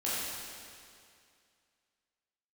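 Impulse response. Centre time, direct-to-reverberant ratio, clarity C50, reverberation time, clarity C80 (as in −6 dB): 152 ms, −9.5 dB, −3.5 dB, 2.3 s, −1.5 dB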